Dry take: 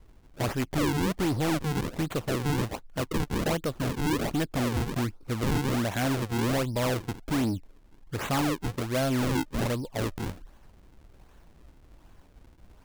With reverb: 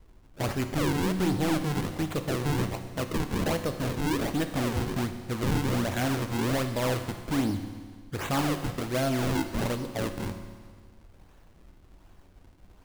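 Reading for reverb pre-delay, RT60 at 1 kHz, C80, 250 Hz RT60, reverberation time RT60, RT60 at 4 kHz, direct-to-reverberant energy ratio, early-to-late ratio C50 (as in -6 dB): 10 ms, 1.7 s, 10.5 dB, 1.7 s, 1.7 s, 1.7 s, 7.0 dB, 9.0 dB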